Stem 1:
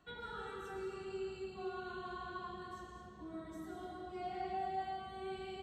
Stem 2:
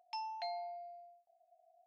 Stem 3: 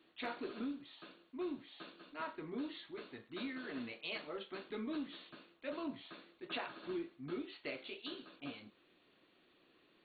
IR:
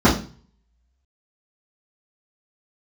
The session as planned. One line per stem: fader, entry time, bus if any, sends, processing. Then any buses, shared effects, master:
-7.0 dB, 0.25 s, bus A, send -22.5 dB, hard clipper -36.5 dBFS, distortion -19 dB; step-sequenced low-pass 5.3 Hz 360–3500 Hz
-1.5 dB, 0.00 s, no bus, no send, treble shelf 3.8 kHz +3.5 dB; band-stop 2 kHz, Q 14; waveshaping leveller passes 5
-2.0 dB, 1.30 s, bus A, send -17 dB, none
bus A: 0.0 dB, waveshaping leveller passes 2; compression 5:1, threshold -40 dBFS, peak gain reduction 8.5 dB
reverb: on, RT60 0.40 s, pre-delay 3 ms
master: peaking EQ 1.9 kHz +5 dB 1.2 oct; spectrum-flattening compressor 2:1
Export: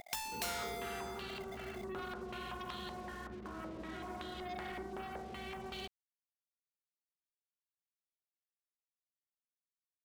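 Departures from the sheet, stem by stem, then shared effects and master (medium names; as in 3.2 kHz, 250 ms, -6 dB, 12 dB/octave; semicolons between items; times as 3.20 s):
stem 3: muted; master: missing peaking EQ 1.9 kHz +5 dB 1.2 oct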